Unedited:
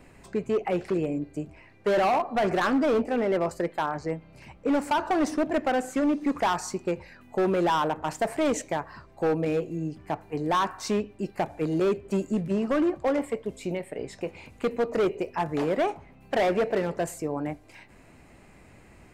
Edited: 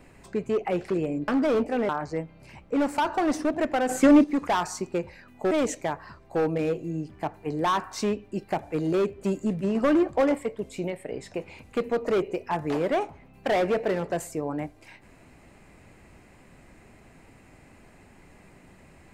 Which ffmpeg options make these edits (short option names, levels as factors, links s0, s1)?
-filter_complex "[0:a]asplit=8[s0][s1][s2][s3][s4][s5][s6][s7];[s0]atrim=end=1.282[s8];[s1]atrim=start=2.668:end=3.282[s9];[s2]atrim=start=3.818:end=5.822[s10];[s3]atrim=start=5.818:end=6.172,asetpts=PTS-STARTPTS,volume=2.66[s11];[s4]atrim=start=6.168:end=7.442[s12];[s5]atrim=start=8.378:end=12.622[s13];[s6]atrim=start=12.618:end=13.222,asetpts=PTS-STARTPTS,volume=1.41[s14];[s7]atrim=start=13.218[s15];[s8][s9]acrossfade=d=0.004:c1=hsin:c2=hsin[s16];[s16][s10]acrossfade=d=0.004:c1=hsin:c2=hsin[s17];[s17][s11]acrossfade=d=0.004:c1=hsin:c2=hsin[s18];[s18][s12]acrossfade=d=0.004:c1=hsin:c2=hsin[s19];[s19][s13]acrossfade=d=0.004:c1=hsin:c2=hsin[s20];[s20][s14]acrossfade=d=0.004:c1=hsin:c2=hsin[s21];[s21][s15]acrossfade=d=0.004:c1=hsin:c2=hsin"